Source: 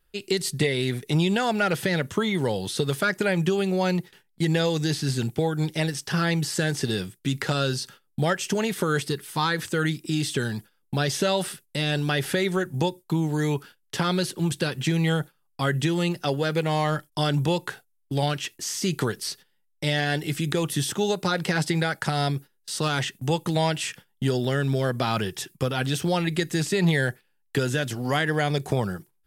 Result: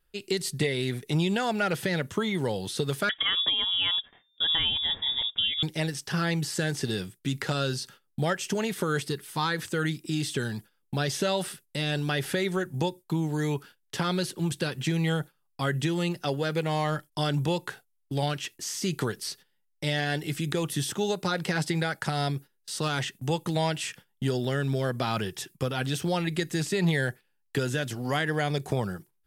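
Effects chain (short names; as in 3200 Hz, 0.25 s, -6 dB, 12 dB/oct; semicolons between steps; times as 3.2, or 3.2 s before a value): 3.09–5.63 inverted band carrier 3600 Hz; gain -3.5 dB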